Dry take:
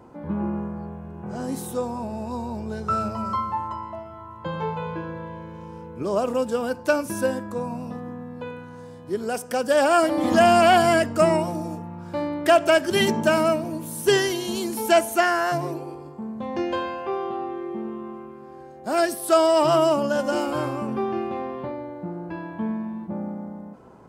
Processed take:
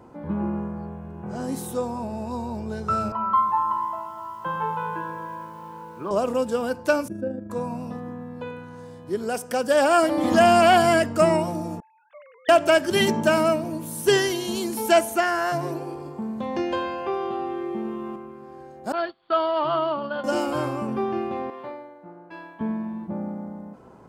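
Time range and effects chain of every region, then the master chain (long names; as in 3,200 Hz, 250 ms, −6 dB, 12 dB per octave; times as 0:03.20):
0:03.12–0:06.11: loudspeaker in its box 200–3,000 Hz, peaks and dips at 260 Hz −9 dB, 420 Hz −5 dB, 590 Hz −6 dB, 1,000 Hz +8 dB, 1,500 Hz +6 dB, 2,200 Hz −7 dB + feedback echo at a low word length 240 ms, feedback 55%, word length 8 bits, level −13.5 dB
0:07.08–0:07.50: moving average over 43 samples + amplitude modulation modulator 26 Hz, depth 25%
0:11.80–0:12.49: three sine waves on the formant tracks + first difference
0:15.10–0:18.16: repeating echo 166 ms, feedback 37%, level −22 dB + multiband upward and downward compressor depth 40%
0:18.92–0:20.24: variable-slope delta modulation 64 kbit/s + noise gate −27 dBFS, range −23 dB + Chebyshev low-pass with heavy ripple 4,600 Hz, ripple 9 dB
0:21.50–0:22.61: high-pass filter 840 Hz 6 dB per octave + multiband upward and downward expander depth 100%
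whole clip: no processing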